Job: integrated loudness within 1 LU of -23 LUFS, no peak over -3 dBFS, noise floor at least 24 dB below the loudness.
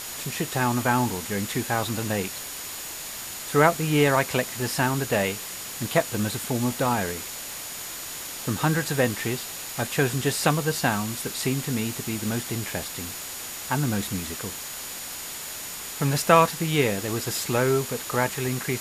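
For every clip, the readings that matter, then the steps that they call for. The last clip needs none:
steady tone 6.9 kHz; tone level -42 dBFS; noise floor -36 dBFS; noise floor target -50 dBFS; loudness -26.0 LUFS; peak level -2.5 dBFS; loudness target -23.0 LUFS
-> band-stop 6.9 kHz, Q 30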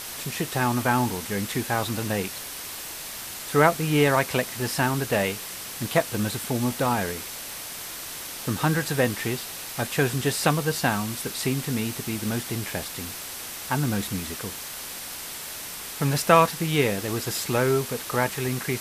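steady tone not found; noise floor -37 dBFS; noise floor target -50 dBFS
-> noise reduction 13 dB, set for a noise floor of -37 dBFS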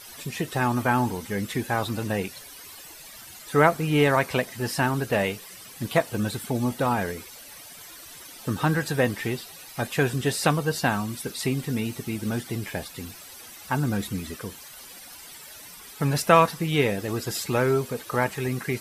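noise floor -45 dBFS; noise floor target -50 dBFS
-> noise reduction 6 dB, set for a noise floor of -45 dBFS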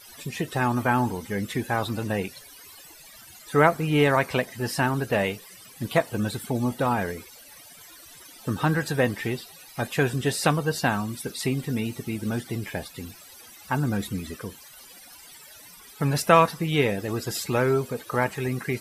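noise floor -48 dBFS; noise floor target -50 dBFS
-> noise reduction 6 dB, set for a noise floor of -48 dBFS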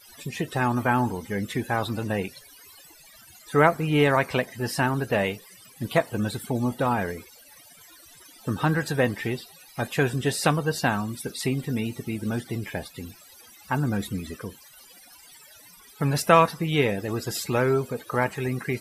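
noise floor -51 dBFS; loudness -25.5 LUFS; peak level -2.5 dBFS; loudness target -23.0 LUFS
-> trim +2.5 dB; peak limiter -3 dBFS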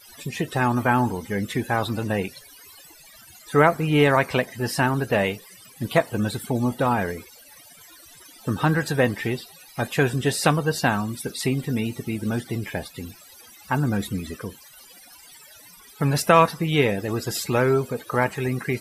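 loudness -23.5 LUFS; peak level -3.0 dBFS; noise floor -49 dBFS

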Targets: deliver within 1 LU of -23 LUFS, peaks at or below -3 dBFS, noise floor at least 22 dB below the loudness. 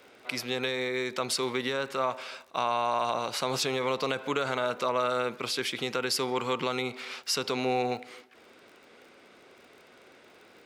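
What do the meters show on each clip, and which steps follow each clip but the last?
tick rate 48 per s; loudness -30.0 LUFS; peak level -13.0 dBFS; loudness target -23.0 LUFS
-> de-click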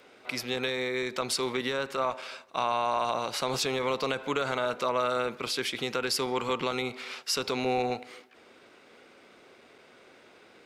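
tick rate 0.47 per s; loudness -30.0 LUFS; peak level -13.0 dBFS; loudness target -23.0 LUFS
-> trim +7 dB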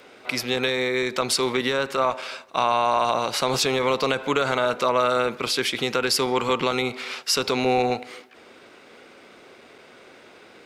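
loudness -23.0 LUFS; peak level -6.0 dBFS; noise floor -50 dBFS

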